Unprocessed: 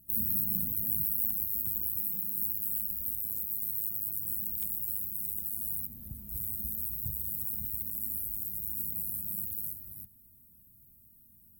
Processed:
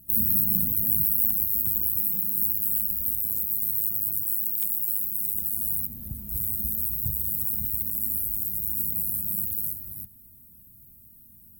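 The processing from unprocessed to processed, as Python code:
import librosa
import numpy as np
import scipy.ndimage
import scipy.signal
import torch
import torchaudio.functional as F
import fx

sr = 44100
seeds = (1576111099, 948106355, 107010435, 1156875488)

y = fx.highpass(x, sr, hz=fx.line((4.22, 610.0), (5.33, 160.0)), slope=6, at=(4.22, 5.33), fade=0.02)
y = F.gain(torch.from_numpy(y), 7.5).numpy()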